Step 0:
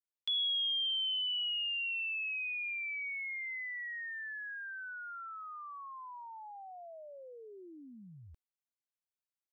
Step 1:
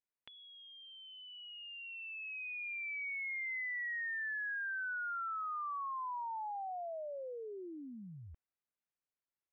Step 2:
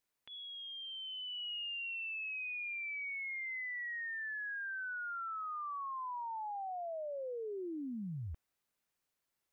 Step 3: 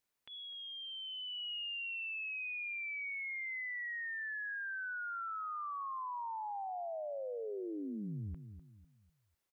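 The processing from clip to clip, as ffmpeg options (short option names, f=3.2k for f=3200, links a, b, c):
-af "acompressor=threshold=-46dB:ratio=6,lowpass=f=2.5k:w=0.5412,lowpass=f=2.5k:w=1.3066,dynaudnorm=f=210:g=21:m=8.5dB"
-af "alimiter=level_in=23dB:limit=-24dB:level=0:latency=1,volume=-23dB,volume=9dB"
-filter_complex "[0:a]asplit=2[a][b];[b]adelay=250,lowpass=f=810:p=1,volume=-9.5dB,asplit=2[c][d];[d]adelay=250,lowpass=f=810:p=1,volume=0.36,asplit=2[e][f];[f]adelay=250,lowpass=f=810:p=1,volume=0.36,asplit=2[g][h];[h]adelay=250,lowpass=f=810:p=1,volume=0.36[i];[a][c][e][g][i]amix=inputs=5:normalize=0"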